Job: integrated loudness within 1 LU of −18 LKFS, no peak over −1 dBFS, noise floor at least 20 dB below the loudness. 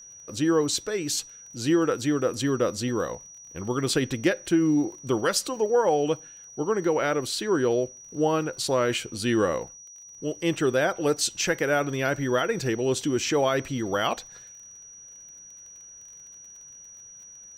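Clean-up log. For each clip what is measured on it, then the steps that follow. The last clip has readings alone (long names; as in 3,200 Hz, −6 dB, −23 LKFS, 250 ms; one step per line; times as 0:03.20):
crackle rate 31 per second; interfering tone 5,800 Hz; level of the tone −44 dBFS; integrated loudness −25.5 LKFS; sample peak −11.0 dBFS; target loudness −18.0 LKFS
→ click removal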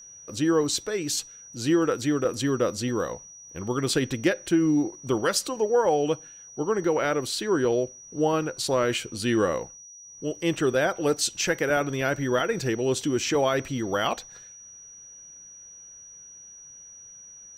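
crackle rate 0.057 per second; interfering tone 5,800 Hz; level of the tone −44 dBFS
→ notch filter 5,800 Hz, Q 30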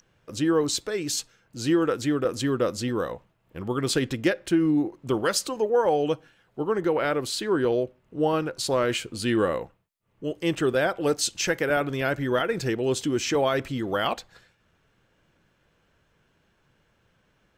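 interfering tone none found; integrated loudness −26.0 LKFS; sample peak −11.0 dBFS; target loudness −18.0 LKFS
→ level +8 dB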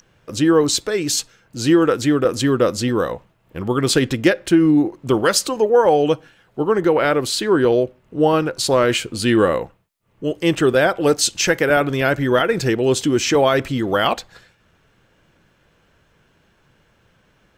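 integrated loudness −18.0 LKFS; sample peak −3.0 dBFS; background noise floor −60 dBFS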